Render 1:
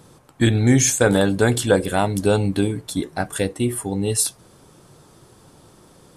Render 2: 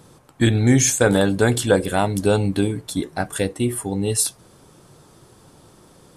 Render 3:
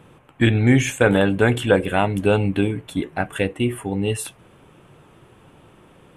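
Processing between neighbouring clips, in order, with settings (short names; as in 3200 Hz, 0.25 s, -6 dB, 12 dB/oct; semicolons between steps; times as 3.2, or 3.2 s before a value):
nothing audible
resonant high shelf 3600 Hz -9.5 dB, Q 3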